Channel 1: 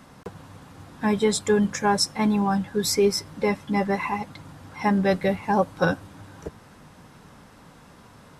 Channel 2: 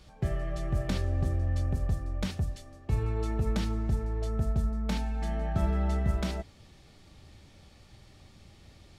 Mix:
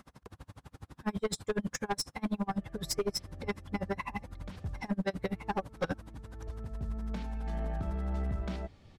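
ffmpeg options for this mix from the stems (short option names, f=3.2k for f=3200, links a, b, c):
-filter_complex "[0:a]equalizer=f=61:w=1.8:g=14.5,aeval=exprs='val(0)*pow(10,-37*(0.5-0.5*cos(2*PI*12*n/s))/20)':c=same,volume=-1.5dB,asplit=2[a][b];[1:a]lowpass=f=2.5k:p=1,alimiter=limit=-23dB:level=0:latency=1:release=460,adelay=2250,volume=-1dB[c];[b]apad=whole_len=495327[d];[c][d]sidechaincompress=threshold=-46dB:ratio=4:attack=16:release=547[e];[a][e]amix=inputs=2:normalize=0,aeval=exprs='(tanh(17.8*val(0)+0.2)-tanh(0.2))/17.8':c=same"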